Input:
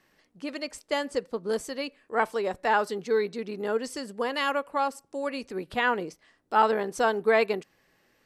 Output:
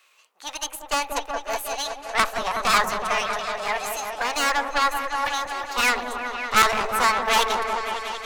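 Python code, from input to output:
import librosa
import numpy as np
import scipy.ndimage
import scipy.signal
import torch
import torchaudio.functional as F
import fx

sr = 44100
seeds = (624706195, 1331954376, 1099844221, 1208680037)

p1 = scipy.signal.sosfilt(scipy.signal.butter(4, 580.0, 'highpass', fs=sr, output='sos'), x)
p2 = fx.cheby_harmonics(p1, sr, harmonics=(2, 4), levels_db=(-8, -9), full_scale_db=-10.5)
p3 = 10.0 ** (-25.0 / 20.0) * (np.abs((p2 / 10.0 ** (-25.0 / 20.0) + 3.0) % 4.0 - 2.0) - 1.0)
p4 = p2 + F.gain(torch.from_numpy(p3), -9.0).numpy()
p5 = fx.cheby_harmonics(p4, sr, harmonics=(6,), levels_db=(-11,), full_scale_db=-6.5)
p6 = fx.formant_shift(p5, sr, semitones=6)
p7 = fx.echo_opening(p6, sr, ms=185, hz=750, octaves=1, feedback_pct=70, wet_db=-3)
y = F.gain(torch.from_numpy(p7), 5.0).numpy()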